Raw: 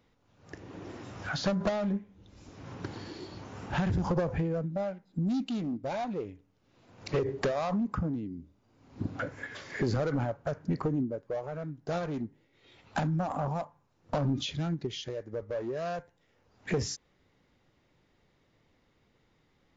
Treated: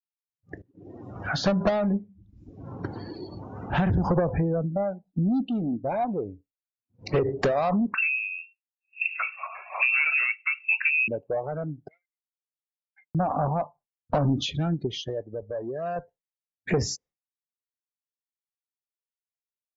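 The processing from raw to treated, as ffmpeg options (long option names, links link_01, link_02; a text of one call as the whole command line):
ffmpeg -i in.wav -filter_complex "[0:a]asettb=1/sr,asplit=3[link_01][link_02][link_03];[link_01]atrim=end=4.194[link_04];[link_02]atrim=start=4.19:end=7.07,asetpts=PTS-STARTPTS,afade=type=in:duration=0.004:curve=qsin,afade=type=out:start_time=2.876:duration=0.004:curve=qsin,highshelf=frequency=2200:gain=-6[link_05];[link_03]atrim=start=7.066[link_06];[link_04][link_05]acrossfade=duration=0.004:curve1=hsin:curve2=qsin[link_07];[link_07][link_06]acrossfade=duration=0.004:curve1=qsin:curve2=hsin,asettb=1/sr,asplit=3[link_08][link_09][link_10];[link_08]atrim=end=7.944[link_11];[link_09]atrim=start=7.94:end=11.08,asetpts=PTS-STARTPTS,afade=type=in:duration=0.004:curve=qsin,afade=type=out:start_time=3.136:duration=0.004:curve=qsin,lowpass=frequency=2400:width_type=q:width=0.5098,lowpass=frequency=2400:width_type=q:width=0.6013,lowpass=frequency=2400:width_type=q:width=0.9,lowpass=frequency=2400:width_type=q:width=2.563,afreqshift=-2800[link_12];[link_10]atrim=start=11.076[link_13];[link_11][link_12]acrossfade=duration=0.004:curve1=hsin:curve2=qsin[link_14];[link_14][link_13]acrossfade=duration=0.004:curve1=qsin:curve2=hsin,asettb=1/sr,asplit=3[link_15][link_16][link_17];[link_15]atrim=end=11.884[link_18];[link_16]atrim=start=11.88:end=13.15,asetpts=PTS-STARTPTS,afade=type=in:duration=0.004:curve=qsin,afade=type=out:start_time=1.266:duration=0.004:curve=qsin,bandpass=frequency=2100:width_type=q:width=17[link_19];[link_17]atrim=start=13.146[link_20];[link_18][link_19]acrossfade=duration=0.004:curve1=hsin:curve2=qsin[link_21];[link_21][link_20]acrossfade=duration=0.004:curve1=qsin:curve2=hsin,asplit=4[link_22][link_23][link_24][link_25];[link_22]atrim=end=0.62,asetpts=PTS-STARTPTS,afade=type=out:start_time=0.616:duration=0.004:curve=hsin:silence=0.105925[link_26];[link_23]atrim=start=0.62:end=15.232,asetpts=PTS-STARTPTS,afade=type=in:duration=0.54:silence=0.105925[link_27];[link_24]atrim=start=15.228:end=15.962,asetpts=PTS-STARTPTS,volume=-4dB[link_28];[link_25]atrim=start=15.958[link_29];[link_26][link_27]concat=n=2:v=0:a=1[link_30];[link_30][link_28]acrossfade=duration=0.004:curve1=hsin:curve2=hsin[link_31];[link_31][link_29]acrossfade=duration=0.004:curve1=hsin:curve2=hsin,afftdn=noise_reduction=28:noise_floor=-46,agate=range=-33dB:threshold=-54dB:ratio=3:detection=peak,equalizer=frequency=720:width_type=o:width=0.26:gain=3.5,volume=5.5dB" out.wav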